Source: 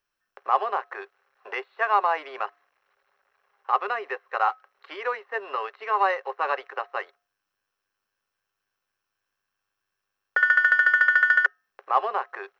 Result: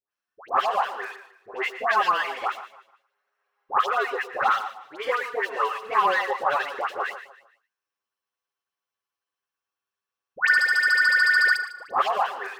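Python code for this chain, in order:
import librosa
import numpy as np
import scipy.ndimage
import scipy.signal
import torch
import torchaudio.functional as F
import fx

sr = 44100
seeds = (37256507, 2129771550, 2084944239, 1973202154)

p1 = fx.leveller(x, sr, passes=2)
p2 = fx.echo_feedback(p1, sr, ms=150, feedback_pct=33, wet_db=-14.5)
p3 = fx.env_flanger(p2, sr, rest_ms=9.7, full_db=-10.5)
p4 = fx.highpass(p3, sr, hz=270.0, slope=6)
p5 = fx.dispersion(p4, sr, late='highs', ms=116.0, hz=1300.0)
y = p5 + fx.echo_single(p5, sr, ms=114, db=-14.0, dry=0)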